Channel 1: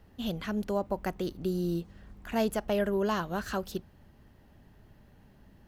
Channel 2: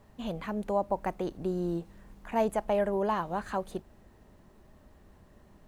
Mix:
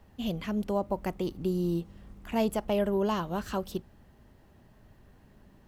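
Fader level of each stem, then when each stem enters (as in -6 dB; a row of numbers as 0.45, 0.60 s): -1.5, -5.0 dB; 0.00, 0.00 s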